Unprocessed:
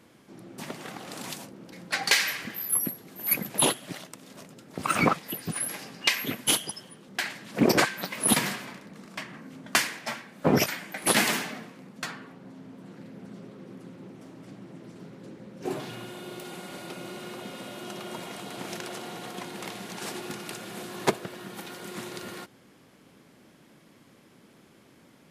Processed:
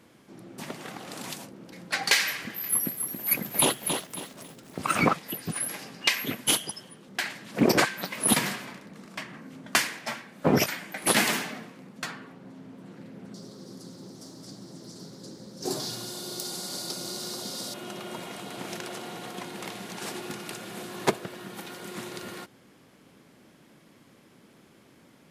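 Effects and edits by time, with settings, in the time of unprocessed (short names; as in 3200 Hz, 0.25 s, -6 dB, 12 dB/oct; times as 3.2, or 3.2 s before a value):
2.36–4.79 lo-fi delay 0.275 s, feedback 35%, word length 8-bit, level -6 dB
13.34–17.74 resonant high shelf 3500 Hz +11 dB, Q 3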